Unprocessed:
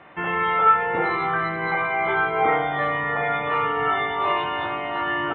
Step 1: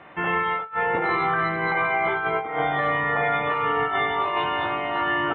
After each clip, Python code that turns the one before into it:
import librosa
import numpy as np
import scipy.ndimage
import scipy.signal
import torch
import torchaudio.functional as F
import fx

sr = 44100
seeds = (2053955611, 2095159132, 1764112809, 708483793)

y = fx.over_compress(x, sr, threshold_db=-23.0, ratio=-0.5)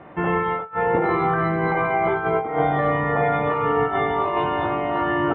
y = fx.tilt_shelf(x, sr, db=8.5, hz=1200.0)